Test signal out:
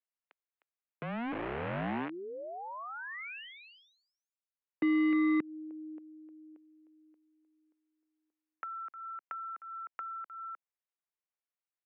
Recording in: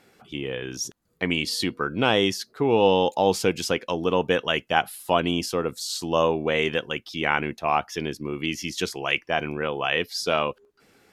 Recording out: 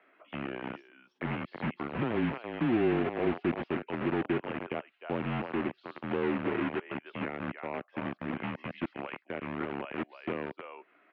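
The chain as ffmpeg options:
ffmpeg -i in.wav -filter_complex "[0:a]aecho=1:1:307:0.299,acrossover=split=460[link_01][link_02];[link_01]acrusher=bits=4:mix=0:aa=0.000001[link_03];[link_02]acompressor=threshold=-38dB:ratio=12[link_04];[link_03][link_04]amix=inputs=2:normalize=0,highpass=frequency=300:width_type=q:width=0.5412,highpass=frequency=300:width_type=q:width=1.307,lowpass=frequency=2800:width_type=q:width=0.5176,lowpass=frequency=2800:width_type=q:width=0.7071,lowpass=frequency=2800:width_type=q:width=1.932,afreqshift=-120,volume=-2dB" out.wav

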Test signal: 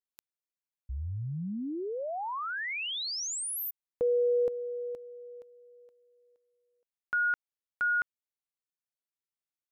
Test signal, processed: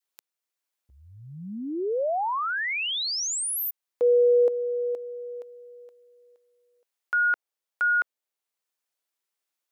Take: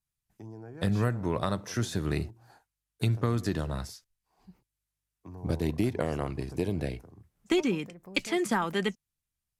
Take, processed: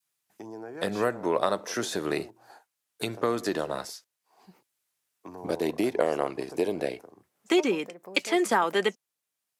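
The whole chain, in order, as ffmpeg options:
ffmpeg -i in.wav -filter_complex "[0:a]highpass=360,adynamicequalizer=threshold=0.00562:dfrequency=540:dqfactor=0.83:tfrequency=540:tqfactor=0.83:attack=5:release=100:ratio=0.375:range=2.5:mode=boostabove:tftype=bell,asplit=2[link_01][link_02];[link_02]acompressor=threshold=-41dB:ratio=6:attack=0.19:release=666:knee=1:detection=rms,volume=2dB[link_03];[link_01][link_03]amix=inputs=2:normalize=0,volume=2.5dB" out.wav

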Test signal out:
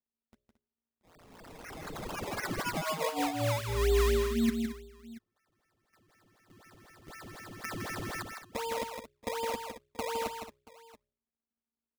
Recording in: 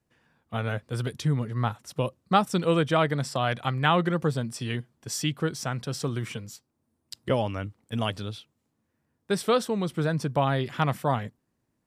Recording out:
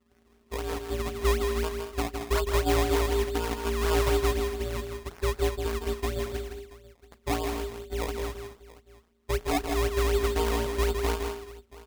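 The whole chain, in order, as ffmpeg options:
ffmpeg -i in.wav -filter_complex "[0:a]afftfilt=real='hypot(re,im)*cos(PI*b)':imag='0':win_size=1024:overlap=0.75,lowpass=frequency=1800:poles=1,bandreject=frequency=62.48:width_type=h:width=4,bandreject=frequency=124.96:width_type=h:width=4,bandreject=frequency=187.44:width_type=h:width=4,bandreject=frequency=249.92:width_type=h:width=4,bandreject=frequency=312.4:width_type=h:width=4,bandreject=frequency=374.88:width_type=h:width=4,bandreject=frequency=437.36:width_type=h:width=4,asplit=2[link_01][link_02];[link_02]acompressor=threshold=-39dB:ratio=12,volume=0dB[link_03];[link_01][link_03]amix=inputs=2:normalize=0,aemphasis=mode=reproduction:type=bsi,aeval=exprs='val(0)*sin(2*PI*230*n/s)':channel_layout=same,acrusher=samples=21:mix=1:aa=0.000001:lfo=1:lforange=21:lforate=4,asoftclip=type=tanh:threshold=-16dB,aecho=1:1:161|223|680:0.501|0.224|0.106" out.wav

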